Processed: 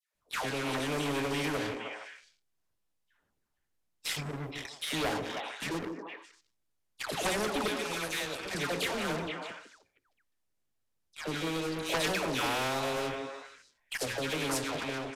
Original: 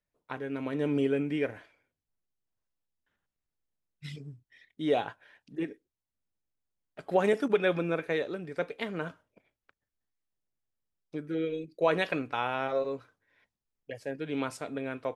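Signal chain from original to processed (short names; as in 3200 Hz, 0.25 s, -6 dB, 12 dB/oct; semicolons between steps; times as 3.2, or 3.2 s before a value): ending faded out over 1.02 s; 7.55–8.41 pre-emphasis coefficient 0.9; notches 60/120/180/240/300/360/420/480/540 Hz; dynamic EQ 1600 Hz, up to -6 dB, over -44 dBFS, Q 0.82; in parallel at -1 dB: compressor, threshold -36 dBFS, peak gain reduction 14.5 dB; on the sum: dispersion lows, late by 0.143 s, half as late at 1100 Hz; sample leveller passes 3; on a send: delay with a stepping band-pass 0.155 s, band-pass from 330 Hz, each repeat 1.4 oct, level -6 dB; on the sum: downsampling 32000 Hz; spectral compressor 2:1; gain -9 dB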